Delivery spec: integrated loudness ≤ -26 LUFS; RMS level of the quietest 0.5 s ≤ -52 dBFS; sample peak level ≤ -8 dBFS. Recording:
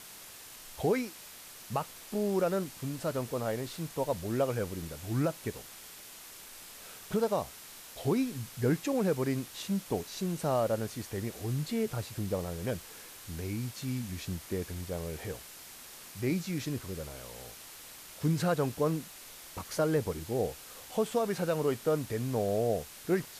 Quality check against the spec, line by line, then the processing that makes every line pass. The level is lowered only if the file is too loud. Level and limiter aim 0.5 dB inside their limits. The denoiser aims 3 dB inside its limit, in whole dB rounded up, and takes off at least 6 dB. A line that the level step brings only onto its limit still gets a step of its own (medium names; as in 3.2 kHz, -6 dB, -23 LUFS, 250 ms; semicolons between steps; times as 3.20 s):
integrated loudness -33.5 LUFS: pass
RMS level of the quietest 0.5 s -49 dBFS: fail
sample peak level -18.5 dBFS: pass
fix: noise reduction 6 dB, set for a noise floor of -49 dBFS